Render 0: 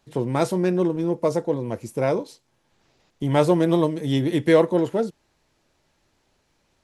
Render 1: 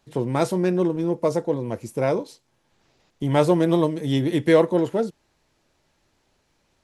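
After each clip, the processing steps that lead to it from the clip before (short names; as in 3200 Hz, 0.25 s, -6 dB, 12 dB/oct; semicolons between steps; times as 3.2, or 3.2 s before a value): nothing audible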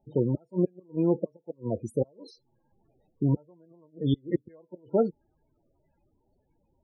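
flipped gate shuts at -12 dBFS, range -38 dB; loudest bins only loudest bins 16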